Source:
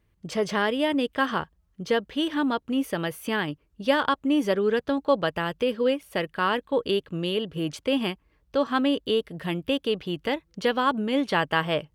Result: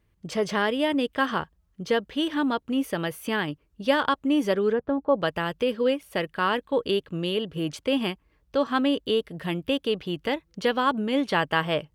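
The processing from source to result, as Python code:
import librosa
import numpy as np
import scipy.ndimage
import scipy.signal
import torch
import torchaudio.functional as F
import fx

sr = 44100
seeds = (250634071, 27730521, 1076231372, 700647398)

y = fx.lowpass(x, sr, hz=1200.0, slope=12, at=(4.72, 5.19), fade=0.02)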